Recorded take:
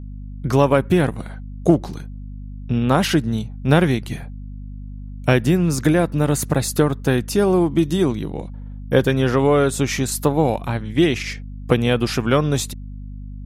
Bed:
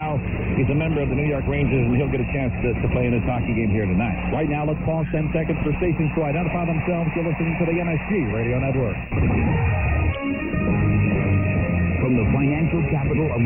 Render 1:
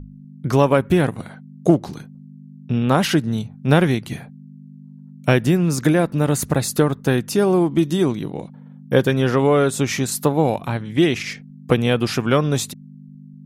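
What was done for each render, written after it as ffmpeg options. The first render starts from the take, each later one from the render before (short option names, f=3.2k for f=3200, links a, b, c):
-af "bandreject=f=50:t=h:w=6,bandreject=f=100:t=h:w=6"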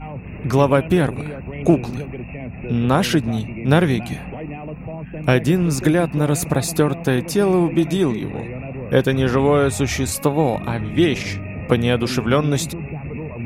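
-filter_complex "[1:a]volume=-9dB[a];[0:a][a]amix=inputs=2:normalize=0"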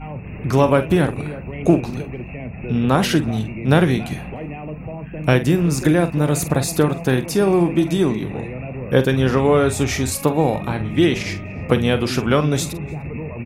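-filter_complex "[0:a]asplit=2[a][b];[b]adelay=46,volume=-11.5dB[c];[a][c]amix=inputs=2:normalize=0,asplit=2[d][e];[e]adelay=297.4,volume=-26dB,highshelf=f=4k:g=-6.69[f];[d][f]amix=inputs=2:normalize=0"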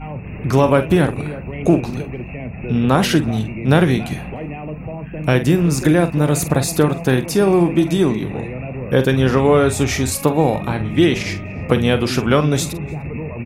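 -af "volume=2dB,alimiter=limit=-3dB:level=0:latency=1"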